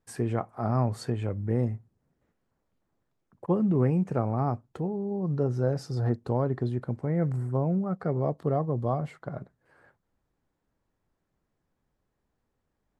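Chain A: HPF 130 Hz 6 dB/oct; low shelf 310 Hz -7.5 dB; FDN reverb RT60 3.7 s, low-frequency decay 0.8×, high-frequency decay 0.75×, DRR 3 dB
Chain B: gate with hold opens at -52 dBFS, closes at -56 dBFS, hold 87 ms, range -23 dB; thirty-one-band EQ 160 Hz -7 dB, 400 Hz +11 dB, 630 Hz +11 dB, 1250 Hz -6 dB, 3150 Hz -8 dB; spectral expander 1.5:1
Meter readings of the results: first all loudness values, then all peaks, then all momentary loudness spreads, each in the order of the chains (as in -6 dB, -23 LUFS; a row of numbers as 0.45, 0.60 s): -32.5, -27.0 LUFS; -15.5, -9.5 dBFS; 14, 12 LU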